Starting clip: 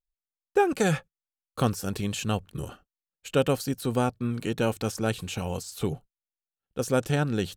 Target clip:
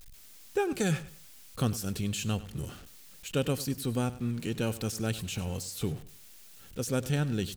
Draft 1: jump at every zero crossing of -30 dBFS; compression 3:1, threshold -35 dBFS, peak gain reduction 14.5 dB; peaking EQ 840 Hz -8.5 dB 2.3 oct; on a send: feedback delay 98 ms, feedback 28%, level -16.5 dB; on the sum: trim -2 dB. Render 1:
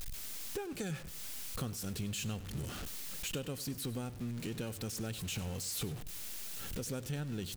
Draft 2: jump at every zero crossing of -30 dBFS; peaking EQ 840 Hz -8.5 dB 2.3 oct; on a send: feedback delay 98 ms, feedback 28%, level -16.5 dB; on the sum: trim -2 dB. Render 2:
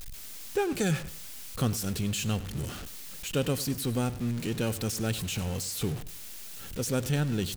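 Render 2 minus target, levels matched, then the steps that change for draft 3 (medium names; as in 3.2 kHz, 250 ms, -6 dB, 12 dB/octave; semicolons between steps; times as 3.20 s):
jump at every zero crossing: distortion +9 dB
change: jump at every zero crossing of -40 dBFS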